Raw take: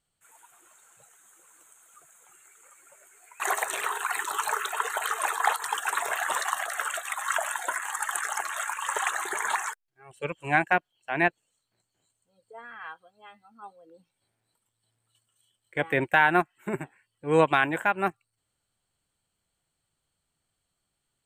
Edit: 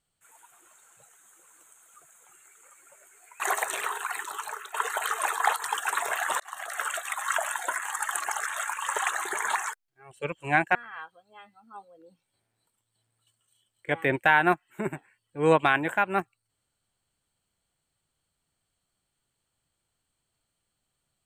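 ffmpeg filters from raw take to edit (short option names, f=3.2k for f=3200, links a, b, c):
-filter_complex "[0:a]asplit=6[a][b][c][d][e][f];[a]atrim=end=4.74,asetpts=PTS-STARTPTS,afade=t=out:st=3.69:d=1.05:silence=0.211349[g];[b]atrim=start=4.74:end=6.4,asetpts=PTS-STARTPTS,afade=t=in:d=0.004:c=hsin:silence=0.211349,afade=t=out:st=1.656:d=0.004:c=hsin[h];[c]atrim=start=6.4:end=8.192,asetpts=PTS-STARTPTS,afade=t=in:d=0.44[i];[d]atrim=start=8.188:end=8.502,asetpts=PTS-STARTPTS,areverse[j];[e]atrim=start=8.498:end=10.752[k];[f]atrim=start=12.628[l];[g][h][i]concat=n=3:v=0:a=1[m];[m][j]acrossfade=d=0.004:c1=hsin:c2=hsin[n];[n][k]acrossfade=d=0.004:c1=hsin:c2=hsin[o];[o][l]acrossfade=d=0.004:c1=hsin:c2=hsin"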